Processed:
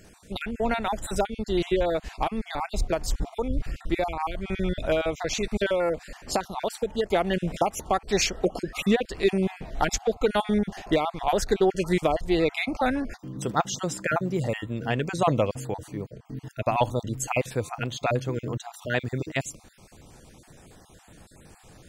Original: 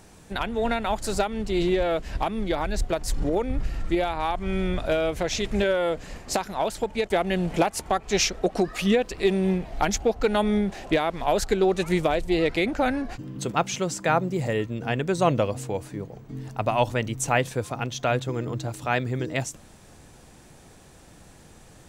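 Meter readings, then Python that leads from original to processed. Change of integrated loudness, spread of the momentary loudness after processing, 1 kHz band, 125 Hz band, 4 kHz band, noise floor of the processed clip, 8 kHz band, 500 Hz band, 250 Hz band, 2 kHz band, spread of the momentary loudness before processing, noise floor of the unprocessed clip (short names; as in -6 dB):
-1.5 dB, 8 LU, -1.5 dB, -1.5 dB, -2.0 dB, -54 dBFS, -2.0 dB, -1.5 dB, -2.0 dB, -2.0 dB, 8 LU, -50 dBFS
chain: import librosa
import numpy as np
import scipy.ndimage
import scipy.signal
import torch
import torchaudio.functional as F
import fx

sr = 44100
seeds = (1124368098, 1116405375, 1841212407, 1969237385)

y = fx.spec_dropout(x, sr, seeds[0], share_pct=31)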